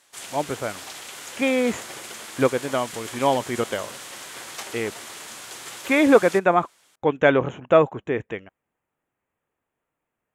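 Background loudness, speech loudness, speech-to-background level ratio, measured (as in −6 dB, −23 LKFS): −36.0 LKFS, −22.5 LKFS, 13.5 dB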